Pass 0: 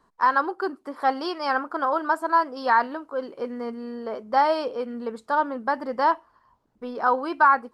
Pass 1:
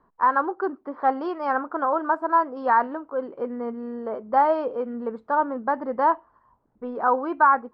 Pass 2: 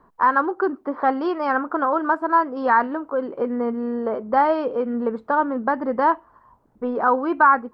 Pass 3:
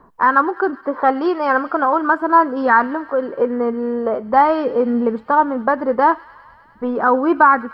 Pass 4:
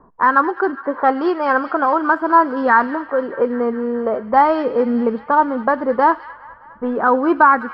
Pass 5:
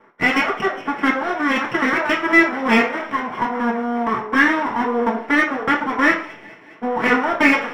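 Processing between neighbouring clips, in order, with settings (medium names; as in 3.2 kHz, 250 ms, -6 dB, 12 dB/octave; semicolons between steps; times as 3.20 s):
low-pass 1.4 kHz 12 dB/octave; trim +1.5 dB
dynamic bell 740 Hz, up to -7 dB, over -31 dBFS, Q 0.76; trim +7.5 dB
phaser 0.41 Hz, delay 2.5 ms, feedback 28%; feedback echo behind a high-pass 101 ms, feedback 79%, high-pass 2.2 kHz, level -15.5 dB; trim +4.5 dB
feedback echo behind a high-pass 206 ms, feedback 75%, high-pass 2 kHz, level -11 dB; level-controlled noise filter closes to 1.2 kHz, open at -9.5 dBFS
full-wave rectifier; reverberation RT60 0.50 s, pre-delay 3 ms, DRR -2.5 dB; trim -9.5 dB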